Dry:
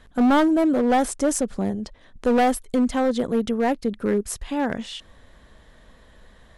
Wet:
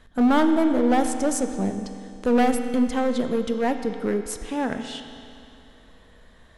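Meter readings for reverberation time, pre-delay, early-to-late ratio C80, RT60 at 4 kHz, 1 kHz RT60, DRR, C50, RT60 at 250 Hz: 2.6 s, 4 ms, 8.0 dB, 2.5 s, 2.6 s, 6.0 dB, 7.5 dB, 2.6 s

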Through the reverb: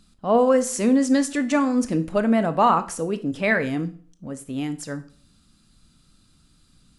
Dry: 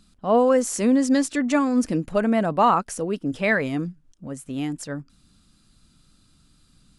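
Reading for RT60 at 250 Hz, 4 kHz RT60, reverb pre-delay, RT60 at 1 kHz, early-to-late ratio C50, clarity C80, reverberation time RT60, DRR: 0.50 s, 0.40 s, 17 ms, 0.45 s, 16.0 dB, 20.0 dB, 0.50 s, 11.0 dB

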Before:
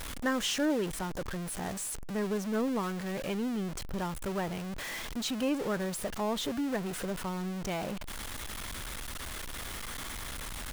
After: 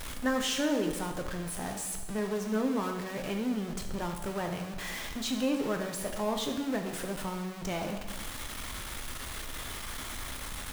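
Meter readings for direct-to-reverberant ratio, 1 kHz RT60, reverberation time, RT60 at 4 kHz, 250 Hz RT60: 3.5 dB, 1.1 s, 1.1 s, 1.0 s, 1.1 s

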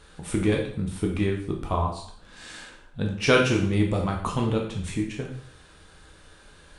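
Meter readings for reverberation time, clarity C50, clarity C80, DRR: 0.60 s, 5.5 dB, 9.5 dB, -0.5 dB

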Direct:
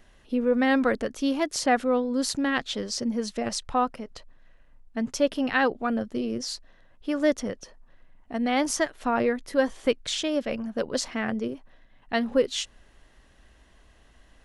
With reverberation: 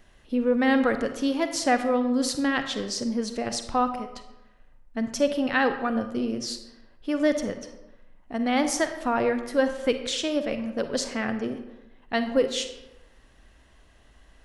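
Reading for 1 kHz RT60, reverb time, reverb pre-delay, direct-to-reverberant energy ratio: 1.0 s, 1.0 s, 38 ms, 8.0 dB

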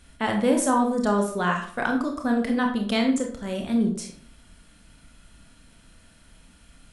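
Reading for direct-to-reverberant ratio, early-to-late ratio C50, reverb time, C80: 2.0 dB, 7.5 dB, 0.50 s, 10.5 dB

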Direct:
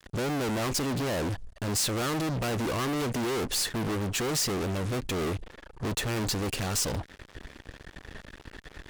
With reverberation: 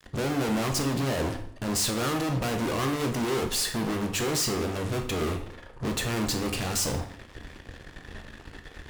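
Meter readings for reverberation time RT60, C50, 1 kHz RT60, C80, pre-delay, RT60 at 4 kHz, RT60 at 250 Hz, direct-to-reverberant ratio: 0.60 s, 8.5 dB, 0.55 s, 12.0 dB, 11 ms, 0.50 s, 0.70 s, 4.0 dB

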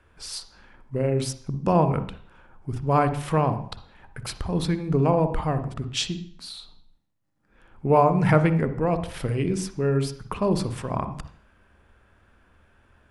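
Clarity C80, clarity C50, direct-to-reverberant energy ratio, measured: 15.0 dB, 10.5 dB, 10.0 dB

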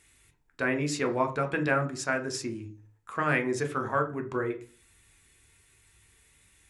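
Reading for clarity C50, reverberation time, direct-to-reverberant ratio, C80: 14.5 dB, 0.40 s, 5.5 dB, 19.5 dB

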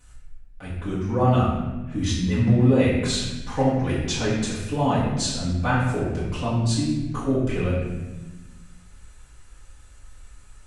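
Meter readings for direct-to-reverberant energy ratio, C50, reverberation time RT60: -11.5 dB, 1.0 dB, 1.2 s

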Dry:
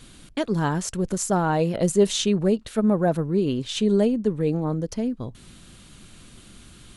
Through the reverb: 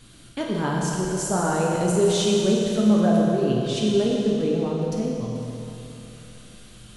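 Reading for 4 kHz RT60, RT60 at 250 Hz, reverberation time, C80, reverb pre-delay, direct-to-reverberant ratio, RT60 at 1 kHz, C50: 2.9 s, 3.1 s, 3.0 s, 0.5 dB, 9 ms, -3.5 dB, 3.0 s, -1.0 dB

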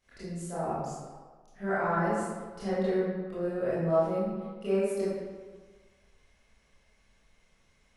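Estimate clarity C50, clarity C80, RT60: -3.5 dB, 0.0 dB, 1.5 s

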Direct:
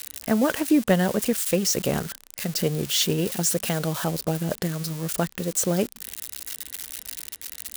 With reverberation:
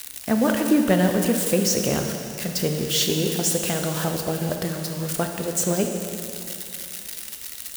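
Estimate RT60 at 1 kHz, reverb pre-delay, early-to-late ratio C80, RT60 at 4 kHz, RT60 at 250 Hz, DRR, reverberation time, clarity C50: 2.8 s, 4 ms, 5.5 dB, 2.5 s, 2.7 s, 3.0 dB, 2.7 s, 4.5 dB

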